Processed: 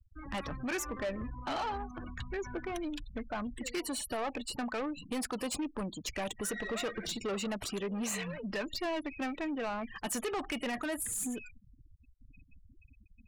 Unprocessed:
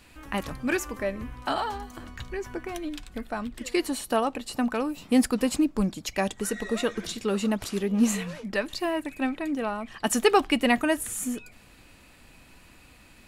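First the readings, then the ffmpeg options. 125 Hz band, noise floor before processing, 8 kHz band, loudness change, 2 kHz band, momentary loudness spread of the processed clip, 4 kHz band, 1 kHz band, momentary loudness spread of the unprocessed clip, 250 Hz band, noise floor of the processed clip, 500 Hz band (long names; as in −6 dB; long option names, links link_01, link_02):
−7.5 dB, −54 dBFS, −4.5 dB, −9.0 dB, −8.0 dB, 5 LU, −6.5 dB, −8.5 dB, 12 LU, −11.0 dB, −62 dBFS, −9.5 dB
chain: -filter_complex "[0:a]afftfilt=real='re*gte(hypot(re,im),0.0112)':imag='im*gte(hypot(re,im),0.0112)':win_size=1024:overlap=0.75,acrossover=split=460[link_01][link_02];[link_01]acompressor=threshold=-34dB:ratio=6[link_03];[link_02]alimiter=limit=-21dB:level=0:latency=1:release=33[link_04];[link_03][link_04]amix=inputs=2:normalize=0,asoftclip=type=tanh:threshold=-30.5dB"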